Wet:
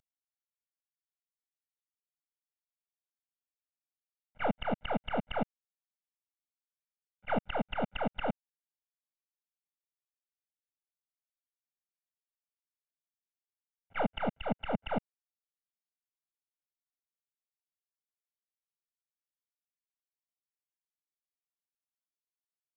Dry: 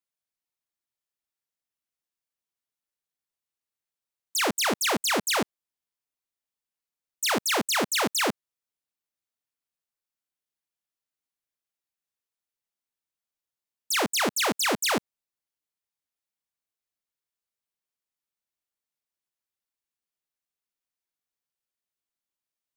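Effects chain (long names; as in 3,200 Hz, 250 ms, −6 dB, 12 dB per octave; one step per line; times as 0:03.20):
variable-slope delta modulation 16 kbit/s
comb filter 1.4 ms, depth 89%
volume swells 135 ms
0:14.37–0:14.91: multiband upward and downward expander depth 100%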